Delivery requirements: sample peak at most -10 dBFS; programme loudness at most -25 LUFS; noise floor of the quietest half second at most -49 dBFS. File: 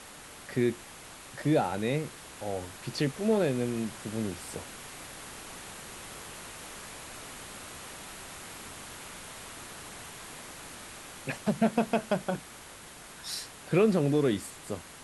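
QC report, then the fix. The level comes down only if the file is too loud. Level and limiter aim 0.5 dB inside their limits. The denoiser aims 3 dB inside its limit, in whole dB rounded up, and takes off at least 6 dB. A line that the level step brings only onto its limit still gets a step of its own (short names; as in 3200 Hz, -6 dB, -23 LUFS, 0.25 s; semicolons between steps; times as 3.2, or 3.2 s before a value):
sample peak -11.5 dBFS: OK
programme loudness -33.0 LUFS: OK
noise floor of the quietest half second -48 dBFS: fail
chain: denoiser 6 dB, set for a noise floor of -48 dBFS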